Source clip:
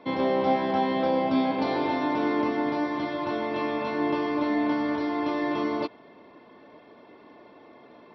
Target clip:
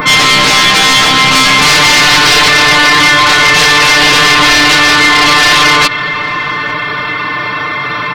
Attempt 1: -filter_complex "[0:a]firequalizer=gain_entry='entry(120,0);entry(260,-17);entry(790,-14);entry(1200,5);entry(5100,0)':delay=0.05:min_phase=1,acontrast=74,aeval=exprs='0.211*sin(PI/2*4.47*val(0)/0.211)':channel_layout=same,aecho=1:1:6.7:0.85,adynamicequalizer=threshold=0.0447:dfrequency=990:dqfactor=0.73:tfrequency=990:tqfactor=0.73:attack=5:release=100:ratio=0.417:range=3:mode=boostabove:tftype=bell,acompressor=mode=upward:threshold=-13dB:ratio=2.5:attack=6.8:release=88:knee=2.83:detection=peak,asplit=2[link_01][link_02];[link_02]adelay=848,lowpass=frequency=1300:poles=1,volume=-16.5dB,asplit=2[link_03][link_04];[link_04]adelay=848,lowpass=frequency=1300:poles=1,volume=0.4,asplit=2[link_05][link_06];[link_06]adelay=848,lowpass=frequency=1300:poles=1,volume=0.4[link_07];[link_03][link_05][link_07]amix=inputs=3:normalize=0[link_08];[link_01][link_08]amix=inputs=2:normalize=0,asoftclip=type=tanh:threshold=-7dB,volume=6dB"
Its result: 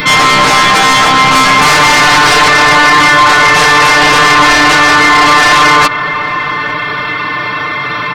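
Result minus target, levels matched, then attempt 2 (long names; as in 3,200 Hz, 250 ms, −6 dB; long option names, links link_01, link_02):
1,000 Hz band +4.0 dB
-filter_complex "[0:a]firequalizer=gain_entry='entry(120,0);entry(260,-17);entry(790,-14);entry(1200,5);entry(5100,0)':delay=0.05:min_phase=1,acontrast=74,aeval=exprs='0.211*sin(PI/2*4.47*val(0)/0.211)':channel_layout=same,aecho=1:1:6.7:0.85,adynamicequalizer=threshold=0.0447:dfrequency=3700:dqfactor=0.73:tfrequency=3700:tqfactor=0.73:attack=5:release=100:ratio=0.417:range=3:mode=boostabove:tftype=bell,acompressor=mode=upward:threshold=-13dB:ratio=2.5:attack=6.8:release=88:knee=2.83:detection=peak,asplit=2[link_01][link_02];[link_02]adelay=848,lowpass=frequency=1300:poles=1,volume=-16.5dB,asplit=2[link_03][link_04];[link_04]adelay=848,lowpass=frequency=1300:poles=1,volume=0.4,asplit=2[link_05][link_06];[link_06]adelay=848,lowpass=frequency=1300:poles=1,volume=0.4[link_07];[link_03][link_05][link_07]amix=inputs=3:normalize=0[link_08];[link_01][link_08]amix=inputs=2:normalize=0,asoftclip=type=tanh:threshold=-7dB,volume=6dB"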